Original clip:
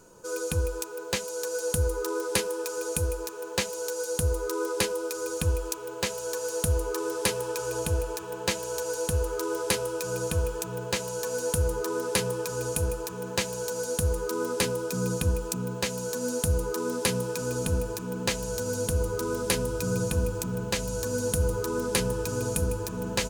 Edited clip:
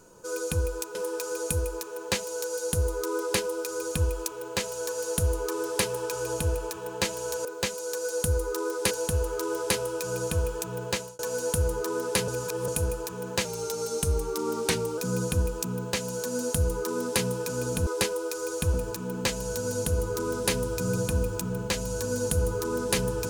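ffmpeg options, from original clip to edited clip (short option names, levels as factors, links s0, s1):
-filter_complex "[0:a]asplit=11[s0][s1][s2][s3][s4][s5][s6][s7][s8][s9][s10];[s0]atrim=end=0.952[s11];[s1]atrim=start=2.408:end=8.912[s12];[s2]atrim=start=0.948:end=2.412[s13];[s3]atrim=start=8.908:end=11.19,asetpts=PTS-STARTPTS,afade=t=out:st=2.022:d=0.26[s14];[s4]atrim=start=11.19:end=12.282,asetpts=PTS-STARTPTS,afade=t=in:d=0.004:c=hsin[s15];[s5]atrim=start=12.278:end=12.682,asetpts=PTS-STARTPTS,areverse[s16];[s6]atrim=start=12.678:end=13.454[s17];[s7]atrim=start=13.45:end=14.87,asetpts=PTS-STARTPTS,asetrate=41013,aresample=44100,atrim=end_sample=67335,asetpts=PTS-STARTPTS[s18];[s8]atrim=start=14.866:end=17.762[s19];[s9]atrim=start=4.658:end=5.532[s20];[s10]atrim=start=17.758[s21];[s11][s12]acrossfade=d=0.004:c1=hsin:c2=hsin[s22];[s22][s13]acrossfade=d=0.004:c1=hsin:c2=hsin[s23];[s14][s15]concat=n=2:v=0:a=1[s24];[s23][s24]acrossfade=d=0.004:c1=hsin:c2=hsin[s25];[s25][s16]acrossfade=d=0.004:c1=hsin:c2=hsin[s26];[s26][s17]acrossfade=d=0.004:c1=hsin:c2=hsin[s27];[s27][s18]acrossfade=d=0.004:c1=hsin:c2=hsin[s28];[s28][s19]acrossfade=d=0.004:c1=hsin:c2=hsin[s29];[s29][s20]acrossfade=d=0.004:c1=hsin:c2=hsin[s30];[s30][s21]acrossfade=d=0.004:c1=hsin:c2=hsin"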